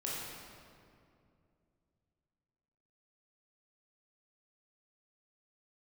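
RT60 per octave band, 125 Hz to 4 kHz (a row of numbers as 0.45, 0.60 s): 3.5, 3.1, 2.7, 2.2, 1.9, 1.5 s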